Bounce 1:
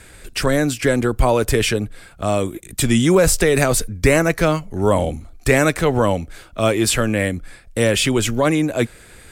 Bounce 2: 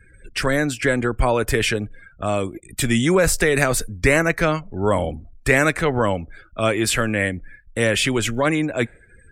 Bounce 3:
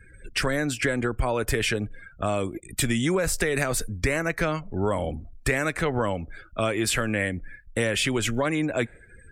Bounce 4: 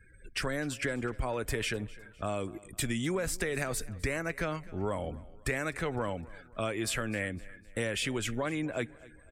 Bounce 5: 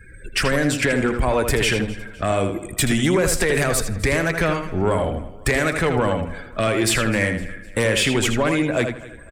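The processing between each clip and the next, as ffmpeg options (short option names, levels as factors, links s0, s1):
-af "afftdn=nr=32:nf=-40,equalizer=f=1800:w=1.2:g=6,volume=0.668"
-af "acompressor=threshold=0.0891:ratio=6"
-af "aecho=1:1:255|510|765:0.0891|0.0383|0.0165,volume=0.398"
-filter_complex "[0:a]aeval=exprs='0.133*sin(PI/2*1.78*val(0)/0.133)':c=same,asplit=2[s0][s1];[s1]adelay=80,lowpass=f=4400:p=1,volume=0.501,asplit=2[s2][s3];[s3]adelay=80,lowpass=f=4400:p=1,volume=0.25,asplit=2[s4][s5];[s5]adelay=80,lowpass=f=4400:p=1,volume=0.25[s6];[s0][s2][s4][s6]amix=inputs=4:normalize=0,volume=1.78"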